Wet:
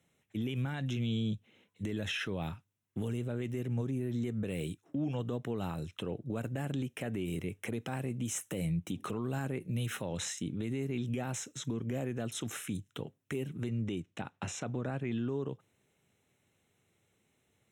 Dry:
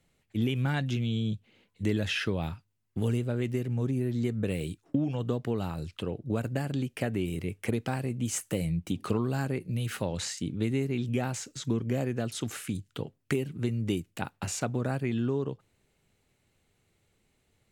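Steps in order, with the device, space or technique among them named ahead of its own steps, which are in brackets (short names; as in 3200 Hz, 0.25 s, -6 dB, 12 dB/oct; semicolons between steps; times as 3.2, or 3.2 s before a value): PA system with an anti-feedback notch (HPF 100 Hz 12 dB/oct; Butterworth band-stop 4600 Hz, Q 4.1; limiter -25 dBFS, peak gain reduction 10 dB); 13.69–15.28 LPF 5900 Hz 12 dB/oct; gain -1.5 dB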